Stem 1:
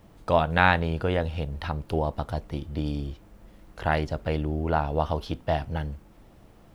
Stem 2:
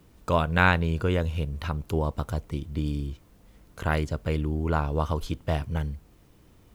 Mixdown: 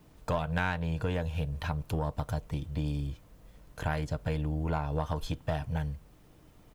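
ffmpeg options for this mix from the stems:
-filter_complex "[0:a]aeval=exprs='(tanh(7.94*val(0)+0.75)-tanh(0.75))/7.94':c=same,volume=0.562[s0];[1:a]aecho=1:1:6.6:0.38,adelay=1.3,volume=0.708[s1];[s0][s1]amix=inputs=2:normalize=0,acompressor=threshold=0.0447:ratio=5"

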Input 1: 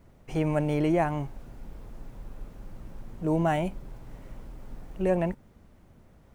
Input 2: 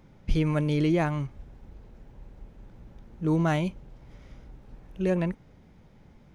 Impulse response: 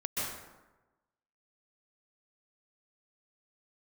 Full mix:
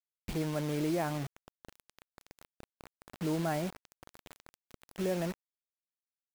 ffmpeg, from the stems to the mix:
-filter_complex "[0:a]alimiter=limit=0.0891:level=0:latency=1:release=190,volume=0.398,asplit=3[s0][s1][s2];[s1]volume=0.0668[s3];[1:a]acompressor=threshold=0.0126:ratio=1.5,volume=1.26[s4];[s2]apad=whole_len=279966[s5];[s4][s5]sidechaincompress=threshold=0.01:ratio=6:attack=5:release=127[s6];[2:a]atrim=start_sample=2205[s7];[s3][s7]afir=irnorm=-1:irlink=0[s8];[s0][s6][s8]amix=inputs=3:normalize=0,highpass=f=200:p=1,acrusher=bits=6:mix=0:aa=0.000001"

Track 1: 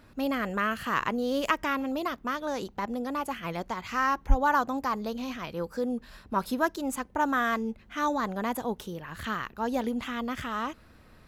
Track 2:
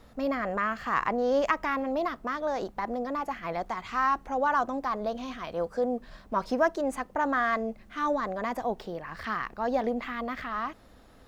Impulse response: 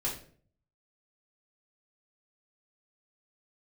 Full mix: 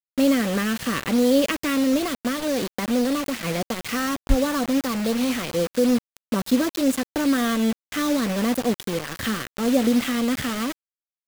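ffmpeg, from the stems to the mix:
-filter_complex "[0:a]acrossover=split=370|3000[s0][s1][s2];[s1]acompressor=threshold=0.01:ratio=5[s3];[s0][s3][s2]amix=inputs=3:normalize=0,equalizer=f=125:t=o:w=1:g=7,equalizer=f=250:t=o:w=1:g=7,equalizer=f=500:t=o:w=1:g=11,equalizer=f=1000:t=o:w=1:g=4,equalizer=f=2000:t=o:w=1:g=8,equalizer=f=4000:t=o:w=1:g=8,equalizer=f=8000:t=o:w=1:g=3,volume=1.12[s4];[1:a]lowpass=1400,bandreject=f=127.9:t=h:w=4,bandreject=f=255.8:t=h:w=4,bandreject=f=383.7:t=h:w=4,bandreject=f=511.6:t=h:w=4,adelay=5.1,volume=0.631[s5];[s4][s5]amix=inputs=2:normalize=0,equalizer=f=930:w=5.1:g=-11.5,acrusher=bits=4:mix=0:aa=0.000001"

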